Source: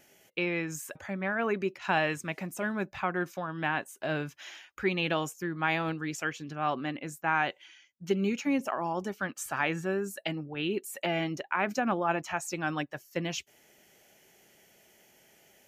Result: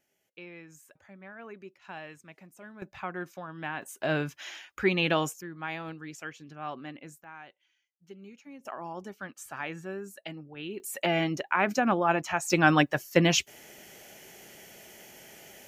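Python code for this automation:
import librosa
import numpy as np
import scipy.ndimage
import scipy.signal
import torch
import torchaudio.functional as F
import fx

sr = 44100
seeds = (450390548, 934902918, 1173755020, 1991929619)

y = fx.gain(x, sr, db=fx.steps((0.0, -15.5), (2.82, -5.5), (3.82, 3.5), (5.41, -7.5), (7.24, -19.5), (8.65, -7.0), (10.8, 3.5), (12.5, 11.0)))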